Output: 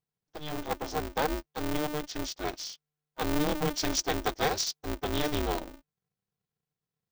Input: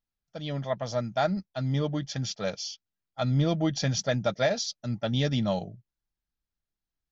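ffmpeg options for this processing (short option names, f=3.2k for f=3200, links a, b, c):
-filter_complex "[0:a]asettb=1/sr,asplit=3[a][b][c];[a]atrim=end=3.784[d];[b]atrim=start=3.78:end=4.79,asetpts=PTS-STARTPTS,afade=t=in:d=0.004:c=qsin,afade=t=out:st=1.006:d=0.004:c=qsin,aemphasis=mode=production:type=cd[e];[c]atrim=start=4.786[f];[d][e]acrossfade=d=0.004:c1=hsin:c2=qsin[g];[g][f]acrossfade=d=0.004:c1=qsin:c2=hsin,aeval=exprs='val(0)*sgn(sin(2*PI*150*n/s))':c=same,volume=-3dB"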